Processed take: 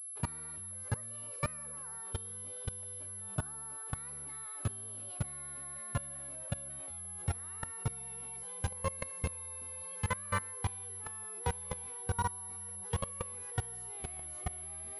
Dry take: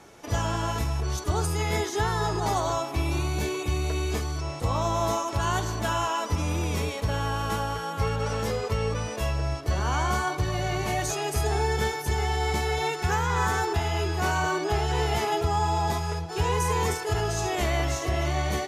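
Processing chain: gliding tape speed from 141% -> 108%; level held to a coarse grid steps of 24 dB; class-D stage that switches slowly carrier 11 kHz; trim -5.5 dB

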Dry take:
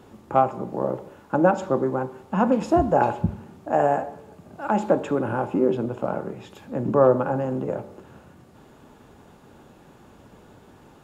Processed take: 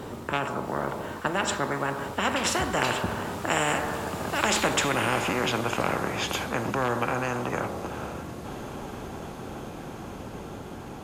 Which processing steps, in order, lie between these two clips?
Doppler pass-by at 4.79 s, 23 m/s, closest 29 m; spectrum-flattening compressor 4:1

